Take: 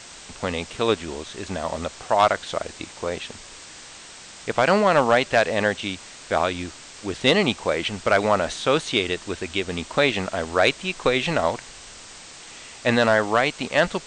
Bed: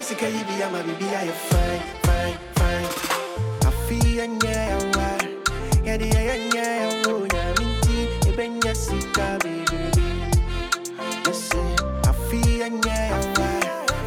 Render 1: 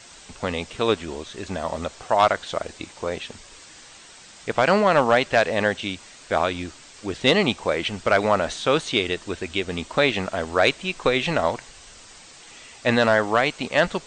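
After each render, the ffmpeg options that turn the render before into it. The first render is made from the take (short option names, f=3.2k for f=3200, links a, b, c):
-af "afftdn=nr=6:nf=-43"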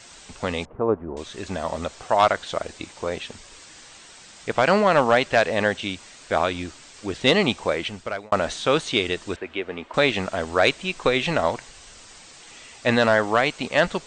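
-filter_complex "[0:a]asettb=1/sr,asplit=3[a][b][c];[a]atrim=end=0.654[d];[b]atrim=start=0.65:end=1.17,asetpts=PTS-STARTPTS,afade=t=in:d=0.004:c=qsin,afade=t=out:st=0.516:d=0.004:c=qsin,lowpass=f=1.1k:w=0.5412,lowpass=f=1.1k:w=1.3066[e];[c]atrim=start=1.166[f];[d][e]acrossfade=d=0.004:c1=hsin:c2=qsin[g];[g][f]acrossfade=d=0.004:c1=qsin:c2=hsin,asettb=1/sr,asplit=3[h][i][j];[h]atrim=end=9.364[k];[i]atrim=start=9.36:end=9.94,asetpts=PTS-STARTPTS,afade=t=in:d=0.004:c=qsin,afade=t=out:st=0.576:d=0.004:c=qsin,acrossover=split=280 2800:gain=0.224 1 0.0631[l][m][n];[l][m][n]amix=inputs=3:normalize=0[o];[j]atrim=start=9.936[p];[k][o]acrossfade=d=0.004:c1=hsin:c2=qsin[q];[q][p]acrossfade=d=0.004:c1=qsin:c2=hsin,asplit=2[r][s];[r]atrim=end=8.32,asetpts=PTS-STARTPTS,afade=t=out:st=7.68:d=0.64[t];[s]atrim=start=8.32,asetpts=PTS-STARTPTS,afade=t=in:d=0.004:c=hsin[u];[t][u]concat=n=2:v=0:a=1"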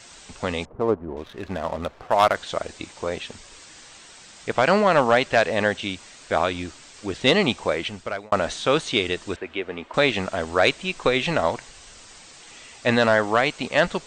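-filter_complex "[0:a]asettb=1/sr,asplit=3[a][b][c];[a]atrim=end=0.694[d];[b]atrim=start=0.69:end=2.35,asetpts=PTS-STARTPTS,afade=t=in:d=0.004:c=qsin,afade=t=out:st=1.656:d=0.004:c=qsin,adynamicsmooth=sensitivity=6.5:basefreq=1.4k[e];[c]atrim=start=2.346[f];[d][e]acrossfade=d=0.004:c1=hsin:c2=qsin[g];[g][f]acrossfade=d=0.004:c1=qsin:c2=hsin"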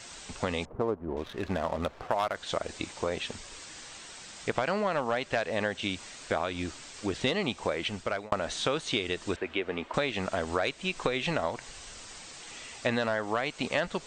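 -af "acompressor=threshold=-26dB:ratio=6"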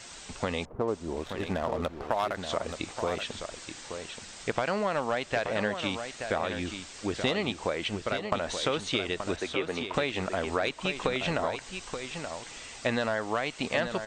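-af "aecho=1:1:878:0.398"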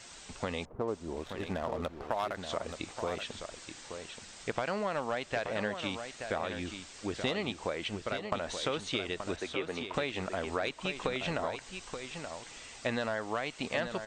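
-af "volume=-4.5dB"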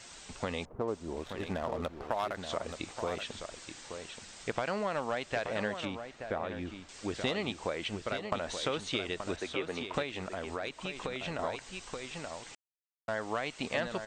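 -filter_complex "[0:a]asettb=1/sr,asplit=3[a][b][c];[a]atrim=end=5.854[d];[b]atrim=start=5.85:end=6.89,asetpts=PTS-STARTPTS,afade=t=in:d=0.004:c=qsin,afade=t=out:st=1.036:d=0.004:c=qsin,lowpass=f=1.5k:p=1[e];[c]atrim=start=6.886[f];[d][e]acrossfade=d=0.004:c1=hsin:c2=qsin[g];[g][f]acrossfade=d=0.004:c1=qsin:c2=hsin,asettb=1/sr,asplit=3[h][i][j];[h]atrim=end=10.024[k];[i]atrim=start=10.02:end=11.39,asetpts=PTS-STARTPTS,afade=t=in:d=0.004:c=qsin,afade=t=out:st=1.366:d=0.004:c=qsin,acompressor=threshold=-39dB:ratio=1.5:attack=3.2:release=140:knee=1:detection=peak[l];[j]atrim=start=11.386[m];[k][l]acrossfade=d=0.004:c1=hsin:c2=qsin[n];[n][m]acrossfade=d=0.004:c1=qsin:c2=hsin,asplit=3[o][p][q];[o]atrim=end=12.55,asetpts=PTS-STARTPTS,afade=t=out:st=12.546:d=0.004:c=hsin[r];[p]atrim=start=12.55:end=13.08,asetpts=PTS-STARTPTS,volume=0[s];[q]atrim=start=13.08,asetpts=PTS-STARTPTS,afade=t=in:d=0.004:c=hsin[t];[r][s][t]concat=n=3:v=0:a=1"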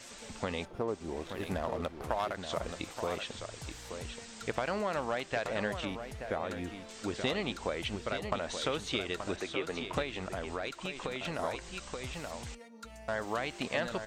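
-filter_complex "[1:a]volume=-27dB[a];[0:a][a]amix=inputs=2:normalize=0"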